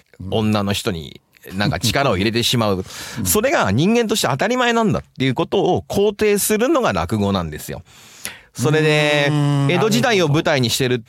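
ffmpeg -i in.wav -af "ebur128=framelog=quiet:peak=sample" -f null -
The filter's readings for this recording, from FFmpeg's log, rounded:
Integrated loudness:
  I:         -17.4 LUFS
  Threshold: -27.9 LUFS
Loudness range:
  LRA:         2.0 LU
  Threshold: -38.0 LUFS
  LRA low:   -19.2 LUFS
  LRA high:  -17.1 LUFS
Sample peak:
  Peak:       -1.4 dBFS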